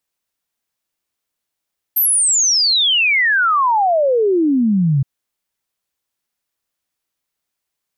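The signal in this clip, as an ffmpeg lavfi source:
ffmpeg -f lavfi -i "aevalsrc='0.266*clip(min(t,3.07-t)/0.01,0,1)*sin(2*PI*13000*3.07/log(130/13000)*(exp(log(130/13000)*t/3.07)-1))':duration=3.07:sample_rate=44100" out.wav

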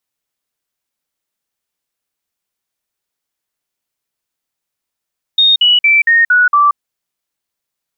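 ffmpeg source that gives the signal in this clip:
ffmpeg -f lavfi -i "aevalsrc='0.501*clip(min(mod(t,0.23),0.18-mod(t,0.23))/0.005,0,1)*sin(2*PI*3700*pow(2,-floor(t/0.23)/3)*mod(t,0.23))':duration=1.38:sample_rate=44100" out.wav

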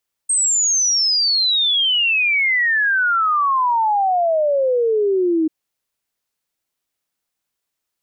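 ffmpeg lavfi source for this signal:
ffmpeg -f lavfi -i "aevalsrc='0.2*clip(min(t,5.19-t)/0.01,0,1)*sin(2*PI*8500*5.19/log(310/8500)*(exp(log(310/8500)*t/5.19)-1))':duration=5.19:sample_rate=44100" out.wav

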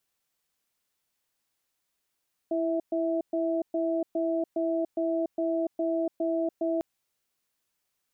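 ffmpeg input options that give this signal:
ffmpeg -f lavfi -i "aevalsrc='0.0422*(sin(2*PI*331*t)+sin(2*PI*655*t))*clip(min(mod(t,0.41),0.29-mod(t,0.41))/0.005,0,1)':duration=4.3:sample_rate=44100" out.wav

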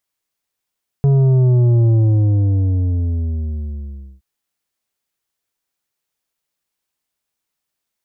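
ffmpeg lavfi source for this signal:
ffmpeg -f lavfi -i "aevalsrc='0.299*clip((3.17-t)/2.33,0,1)*tanh(2.51*sin(2*PI*140*3.17/log(65/140)*(exp(log(65/140)*t/3.17)-1)))/tanh(2.51)':duration=3.17:sample_rate=44100" out.wav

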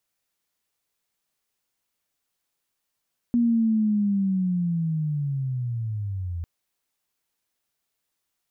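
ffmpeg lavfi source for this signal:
ffmpeg -f lavfi -i "aevalsrc='pow(10,(-17-10.5*t/3.1)/20)*sin(2*PI*(240*t-158*t*t/(2*3.1)))':duration=3.1:sample_rate=44100" out.wav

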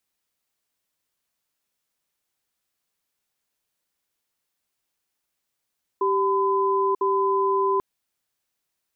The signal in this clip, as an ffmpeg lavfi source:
ffmpeg -f lavfi -i "aevalsrc='0.0841*(sin(2*PI*390*t)+sin(2*PI*1010*t))*clip(min(mod(t,1),0.94-mod(t,1))/0.005,0,1)':duration=1.79:sample_rate=44100" out.wav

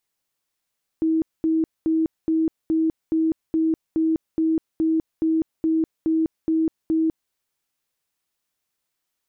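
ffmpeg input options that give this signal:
ffmpeg -f lavfi -i "aevalsrc='0.141*sin(2*PI*321*mod(t,0.42))*lt(mod(t,0.42),64/321)':duration=6.3:sample_rate=44100" out.wav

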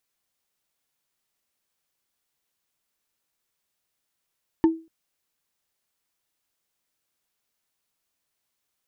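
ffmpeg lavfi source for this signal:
ffmpeg -f lavfi -i "aevalsrc='0.282*pow(10,-3*t/0.31)*sin(2*PI*325*t)+0.0841*pow(10,-3*t/0.092)*sin(2*PI*896*t)+0.0251*pow(10,-3*t/0.041)*sin(2*PI*1756.3*t)+0.0075*pow(10,-3*t/0.022)*sin(2*PI*2903.2*t)+0.00224*pow(10,-3*t/0.014)*sin(2*PI*4335.5*t)':duration=0.24:sample_rate=44100" out.wav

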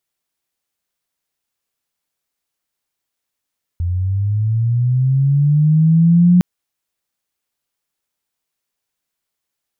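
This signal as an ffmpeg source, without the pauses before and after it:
ffmpeg -f lavfi -i "aevalsrc='pow(10,(-16+9.5*t/2.61)/20)*sin(2*PI*(85*t+95*t*t/(2*2.61)))':duration=2.61:sample_rate=44100" out.wav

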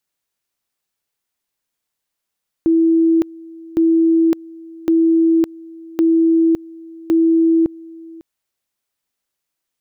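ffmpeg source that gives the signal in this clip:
ffmpeg -f lavfi -i "aevalsrc='pow(10,(-10-23*gte(mod(t,1.11),0.56))/20)*sin(2*PI*328*t)':duration=5.55:sample_rate=44100" out.wav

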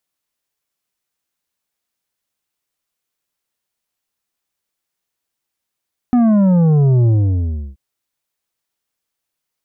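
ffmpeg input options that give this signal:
ffmpeg -f lavfi -i "aevalsrc='0.316*clip((1.63-t)/0.69,0,1)*tanh(2.51*sin(2*PI*250*1.63/log(65/250)*(exp(log(65/250)*t/1.63)-1)))/tanh(2.51)':duration=1.63:sample_rate=44100" out.wav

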